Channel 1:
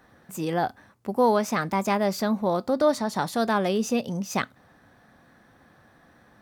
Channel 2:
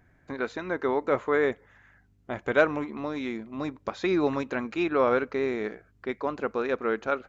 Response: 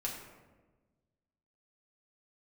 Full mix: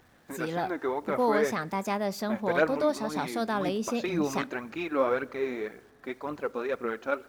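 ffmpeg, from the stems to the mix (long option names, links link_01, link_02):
-filter_complex "[0:a]volume=-6dB,asplit=2[link_01][link_02];[link_02]volume=-24dB[link_03];[1:a]acrusher=bits=9:mix=0:aa=0.000001,aphaser=in_gain=1:out_gain=1:delay=3.9:decay=0.51:speed=1.9:type=triangular,volume=-5.5dB,asplit=2[link_04][link_05];[link_05]volume=-19.5dB[link_06];[2:a]atrim=start_sample=2205[link_07];[link_03][link_06]amix=inputs=2:normalize=0[link_08];[link_08][link_07]afir=irnorm=-1:irlink=0[link_09];[link_01][link_04][link_09]amix=inputs=3:normalize=0,lowshelf=frequency=62:gain=-9.5"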